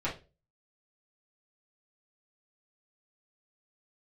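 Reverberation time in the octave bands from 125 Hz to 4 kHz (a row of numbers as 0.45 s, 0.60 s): 0.45 s, 0.35 s, 0.35 s, 0.25 s, 0.25 s, 0.25 s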